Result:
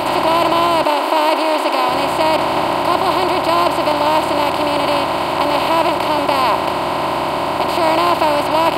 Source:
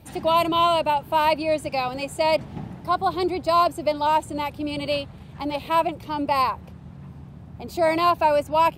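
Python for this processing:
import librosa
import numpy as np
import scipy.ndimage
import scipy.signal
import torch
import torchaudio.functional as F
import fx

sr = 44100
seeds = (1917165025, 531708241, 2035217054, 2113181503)

y = fx.bin_compress(x, sr, power=0.2)
y = fx.brickwall_highpass(y, sr, low_hz=240.0, at=(0.84, 1.89))
y = F.gain(torch.from_numpy(y), -1.5).numpy()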